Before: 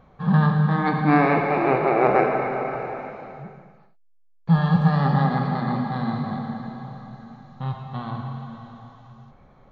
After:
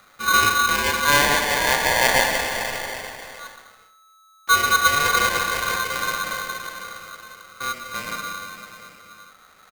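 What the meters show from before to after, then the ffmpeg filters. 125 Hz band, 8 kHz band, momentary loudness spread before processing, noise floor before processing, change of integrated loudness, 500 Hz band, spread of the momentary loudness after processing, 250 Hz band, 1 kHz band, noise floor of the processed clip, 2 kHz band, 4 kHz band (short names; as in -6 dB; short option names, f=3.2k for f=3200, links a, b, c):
-17.0 dB, n/a, 19 LU, -55 dBFS, +2.0 dB, -3.5 dB, 19 LU, -13.5 dB, +2.5 dB, -54 dBFS, +11.0 dB, +20.5 dB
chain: -af "aecho=1:1:278:0.0841,aeval=exprs='val(0)*sgn(sin(2*PI*1300*n/s))':c=same"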